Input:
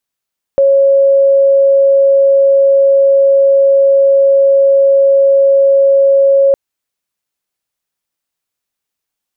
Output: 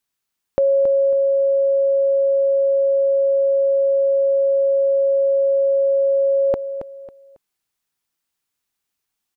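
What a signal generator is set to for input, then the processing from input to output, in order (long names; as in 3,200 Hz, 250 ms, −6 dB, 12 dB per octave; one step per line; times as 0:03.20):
tone sine 550 Hz −5 dBFS 5.96 s
parametric band 560 Hz −7.5 dB 0.36 octaves
repeating echo 274 ms, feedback 29%, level −10 dB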